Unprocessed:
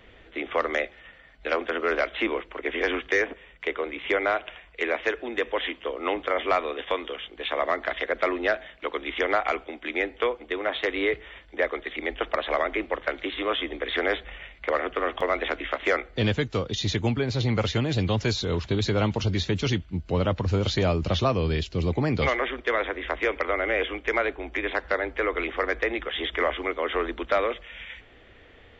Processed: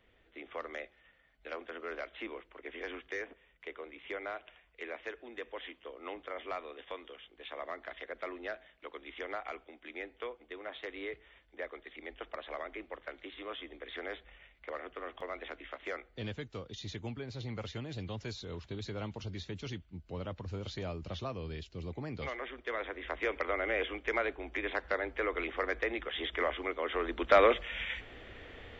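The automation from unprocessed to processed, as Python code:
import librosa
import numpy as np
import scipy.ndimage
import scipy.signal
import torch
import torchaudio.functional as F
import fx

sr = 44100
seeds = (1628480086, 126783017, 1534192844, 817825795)

y = fx.gain(x, sr, db=fx.line((22.19, -16.0), (23.36, -7.5), (26.99, -7.5), (27.45, 2.5)))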